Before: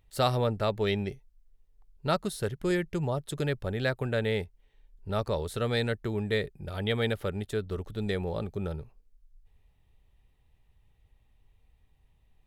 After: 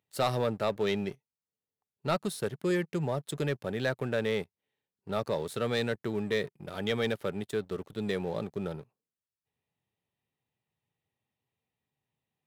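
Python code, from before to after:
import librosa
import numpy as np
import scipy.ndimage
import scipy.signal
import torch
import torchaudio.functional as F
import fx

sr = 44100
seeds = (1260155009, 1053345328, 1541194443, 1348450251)

y = scipy.signal.sosfilt(scipy.signal.butter(4, 130.0, 'highpass', fs=sr, output='sos'), x)
y = fx.leveller(y, sr, passes=2)
y = y * 10.0 ** (-7.5 / 20.0)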